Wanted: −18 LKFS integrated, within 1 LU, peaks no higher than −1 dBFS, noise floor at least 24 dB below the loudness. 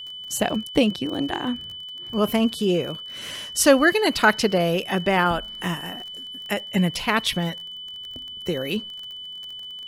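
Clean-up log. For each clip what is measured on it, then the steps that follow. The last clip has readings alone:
crackle rate 30 per second; interfering tone 3,000 Hz; level of the tone −34 dBFS; integrated loudness −23.0 LKFS; sample peak −3.5 dBFS; target loudness −18.0 LKFS
→ click removal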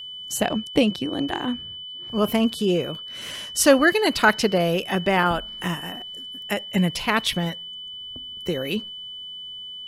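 crackle rate 0.10 per second; interfering tone 3,000 Hz; level of the tone −34 dBFS
→ notch filter 3,000 Hz, Q 30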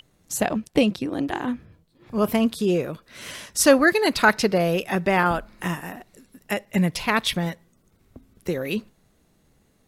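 interfering tone none found; integrated loudness −23.0 LKFS; sample peak −3.5 dBFS; target loudness −18.0 LKFS
→ level +5 dB
brickwall limiter −1 dBFS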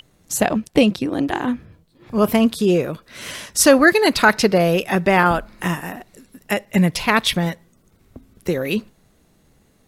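integrated loudness −18.0 LKFS; sample peak −1.0 dBFS; background noise floor −58 dBFS

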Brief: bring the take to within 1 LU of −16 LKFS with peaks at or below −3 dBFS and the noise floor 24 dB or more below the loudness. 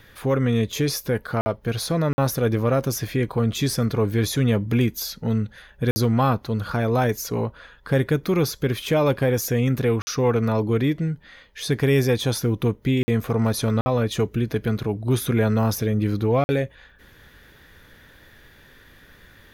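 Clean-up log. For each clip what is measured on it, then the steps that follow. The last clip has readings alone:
number of dropouts 7; longest dropout 50 ms; integrated loudness −23.0 LKFS; sample peak −9.5 dBFS; target loudness −16.0 LKFS
→ repair the gap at 0:01.41/0:02.13/0:05.91/0:10.02/0:13.03/0:13.81/0:16.44, 50 ms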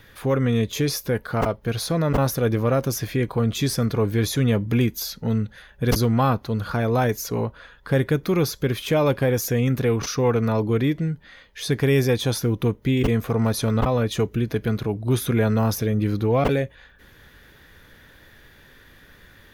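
number of dropouts 0; integrated loudness −22.5 LKFS; sample peak −6.5 dBFS; target loudness −16.0 LKFS
→ level +6.5 dB
brickwall limiter −3 dBFS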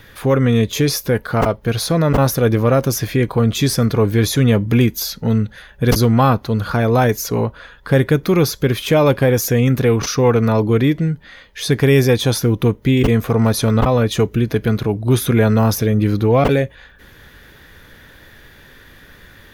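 integrated loudness −16.5 LKFS; sample peak −3.0 dBFS; background noise floor −45 dBFS

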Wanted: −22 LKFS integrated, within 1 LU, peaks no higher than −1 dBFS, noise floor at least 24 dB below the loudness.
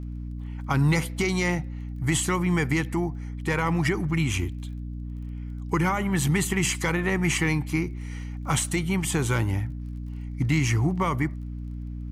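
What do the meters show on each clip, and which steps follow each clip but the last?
crackle rate 21 per second; mains hum 60 Hz; hum harmonics up to 300 Hz; level of the hum −31 dBFS; integrated loudness −26.0 LKFS; sample peak −11.5 dBFS; target loudness −22.0 LKFS
→ click removal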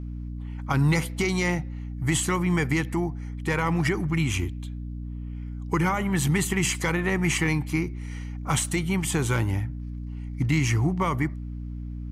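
crackle rate 0 per second; mains hum 60 Hz; hum harmonics up to 300 Hz; level of the hum −31 dBFS
→ hum removal 60 Hz, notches 5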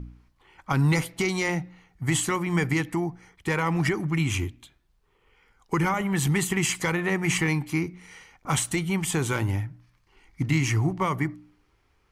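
mains hum none found; integrated loudness −26.0 LKFS; sample peak −12.0 dBFS; target loudness −22.0 LKFS
→ level +4 dB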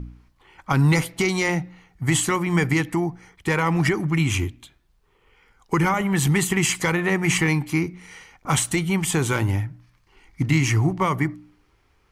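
integrated loudness −22.0 LKFS; sample peak −8.0 dBFS; background noise floor −62 dBFS

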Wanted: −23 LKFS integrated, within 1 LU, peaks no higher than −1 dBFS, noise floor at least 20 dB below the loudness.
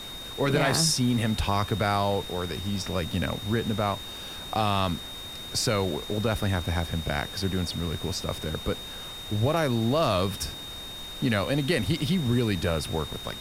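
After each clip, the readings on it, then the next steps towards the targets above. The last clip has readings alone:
interfering tone 3,700 Hz; level of the tone −38 dBFS; background noise floor −39 dBFS; target noise floor −48 dBFS; integrated loudness −27.5 LKFS; sample peak −11.0 dBFS; target loudness −23.0 LKFS
→ notch filter 3,700 Hz, Q 30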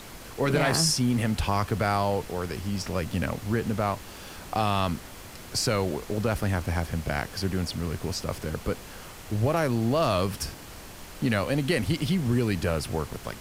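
interfering tone none found; background noise floor −44 dBFS; target noise floor −48 dBFS
→ noise reduction from a noise print 6 dB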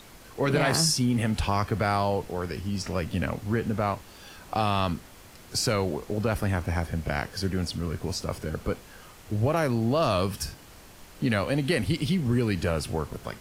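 background noise floor −49 dBFS; integrated loudness −27.5 LKFS; sample peak −11.0 dBFS; target loudness −23.0 LKFS
→ level +4.5 dB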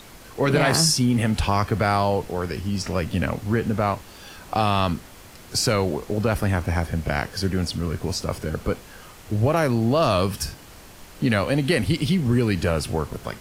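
integrated loudness −23.0 LKFS; sample peak −6.5 dBFS; background noise floor −45 dBFS

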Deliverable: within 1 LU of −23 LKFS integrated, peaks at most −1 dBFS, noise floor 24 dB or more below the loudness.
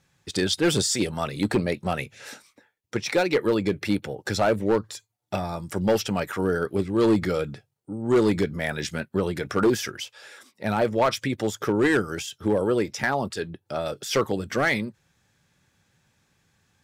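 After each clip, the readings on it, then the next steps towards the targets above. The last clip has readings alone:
share of clipped samples 0.9%; peaks flattened at −14.5 dBFS; integrated loudness −25.5 LKFS; sample peak −14.5 dBFS; target loudness −23.0 LKFS
→ clipped peaks rebuilt −14.5 dBFS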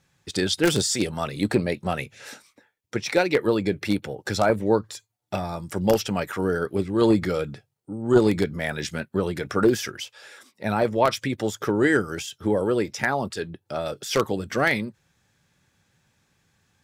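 share of clipped samples 0.0%; integrated loudness −24.5 LKFS; sample peak −5.5 dBFS; target loudness −23.0 LKFS
→ level +1.5 dB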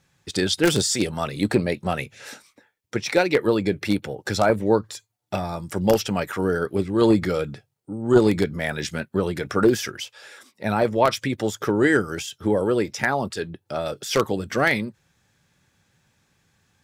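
integrated loudness −23.0 LKFS; sample peak −4.0 dBFS; background noise floor −72 dBFS

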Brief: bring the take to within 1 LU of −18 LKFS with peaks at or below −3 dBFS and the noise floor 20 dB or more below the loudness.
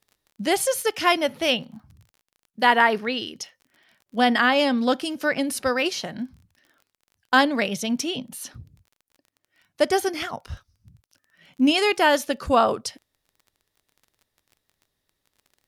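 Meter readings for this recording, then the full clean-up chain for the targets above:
crackle rate 25 per second; integrated loudness −22.5 LKFS; sample peak −4.5 dBFS; target loudness −18.0 LKFS
→ click removal
level +4.5 dB
brickwall limiter −3 dBFS

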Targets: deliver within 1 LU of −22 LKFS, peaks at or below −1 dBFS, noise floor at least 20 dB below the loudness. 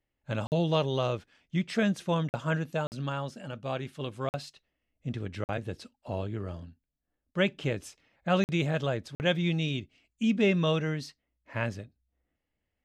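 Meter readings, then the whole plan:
number of dropouts 7; longest dropout 49 ms; integrated loudness −31.0 LKFS; sample peak −13.0 dBFS; target loudness −22.0 LKFS
→ repair the gap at 0:00.47/0:02.29/0:02.87/0:04.29/0:05.44/0:08.44/0:09.15, 49 ms
level +9 dB

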